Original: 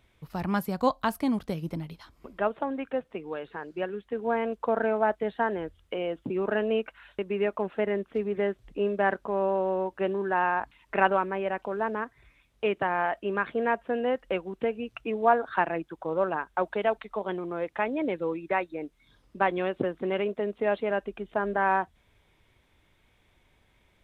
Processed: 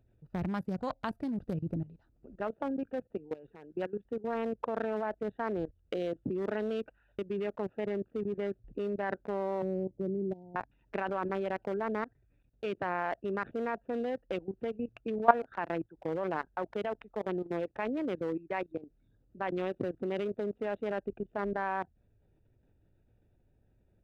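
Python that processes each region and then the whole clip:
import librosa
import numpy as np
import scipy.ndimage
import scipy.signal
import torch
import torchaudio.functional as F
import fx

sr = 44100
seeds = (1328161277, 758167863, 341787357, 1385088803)

y = fx.chain(x, sr, fx.gaussian_blur(sigma=16.0),
    fx.peak_eq(hz=150.0, db=9.5, octaves=0.48),
    fx.band_squash(depth_pct=70), at=(9.62, 10.56))
y = fx.wiener(y, sr, points=41)
y = fx.level_steps(y, sr, step_db=18)
y = fx.peak_eq(y, sr, hz=110.0, db=6.0, octaves=0.23)
y = F.gain(torch.from_numpy(y), 3.0).numpy()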